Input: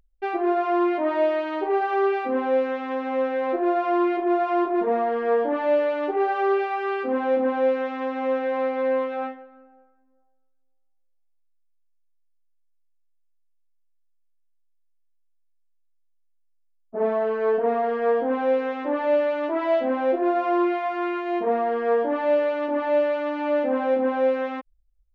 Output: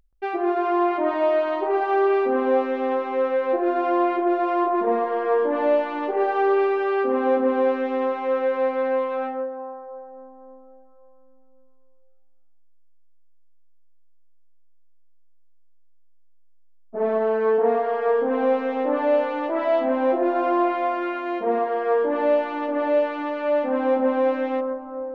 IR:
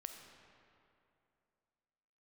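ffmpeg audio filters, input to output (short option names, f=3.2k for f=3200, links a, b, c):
-filter_complex "[0:a]asplit=2[a][b];[b]highshelf=f=1.8k:t=q:w=1.5:g=-13[c];[1:a]atrim=start_sample=2205,asetrate=29106,aresample=44100,adelay=127[d];[c][d]afir=irnorm=-1:irlink=0,volume=-4.5dB[e];[a][e]amix=inputs=2:normalize=0"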